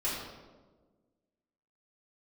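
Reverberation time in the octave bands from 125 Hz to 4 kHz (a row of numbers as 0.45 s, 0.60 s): 1.7 s, 1.8 s, 1.6 s, 1.1 s, 0.90 s, 0.80 s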